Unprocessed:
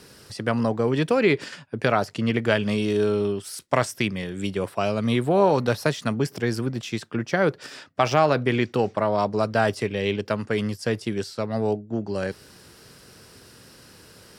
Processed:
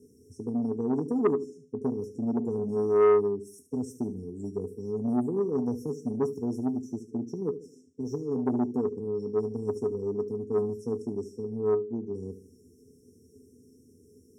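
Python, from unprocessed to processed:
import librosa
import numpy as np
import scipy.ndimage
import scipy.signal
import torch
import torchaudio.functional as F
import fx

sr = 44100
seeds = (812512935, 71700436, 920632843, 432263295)

y = fx.brickwall_bandstop(x, sr, low_hz=500.0, high_hz=5300.0)
y = fx.peak_eq(y, sr, hz=290.0, db=13.5, octaves=2.9)
y = fx.comb_fb(y, sr, f0_hz=84.0, decay_s=0.16, harmonics='odd', damping=0.0, mix_pct=90)
y = fx.echo_feedback(y, sr, ms=74, feedback_pct=39, wet_db=-12.0)
y = fx.transformer_sat(y, sr, knee_hz=620.0)
y = y * librosa.db_to_amplitude(-7.5)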